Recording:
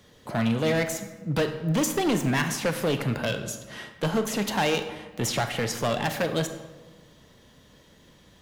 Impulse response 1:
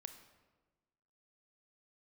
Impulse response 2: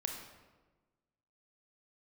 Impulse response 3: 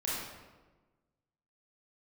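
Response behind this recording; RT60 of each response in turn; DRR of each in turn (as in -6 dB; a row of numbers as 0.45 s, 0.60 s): 1; 1.3 s, 1.3 s, 1.3 s; 8.0 dB, 2.0 dB, -7.5 dB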